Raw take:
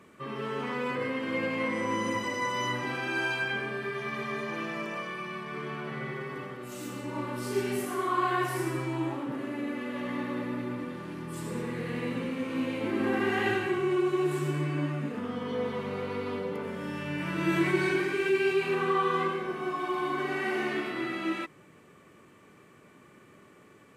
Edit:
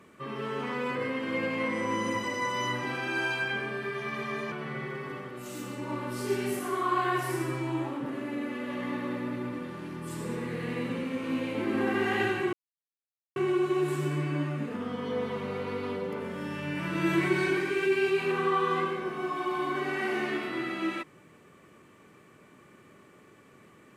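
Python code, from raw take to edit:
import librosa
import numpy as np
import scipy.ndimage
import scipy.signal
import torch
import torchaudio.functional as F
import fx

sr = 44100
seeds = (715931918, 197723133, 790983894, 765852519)

y = fx.edit(x, sr, fx.cut(start_s=4.52, length_s=1.26),
    fx.insert_silence(at_s=13.79, length_s=0.83), tone=tone)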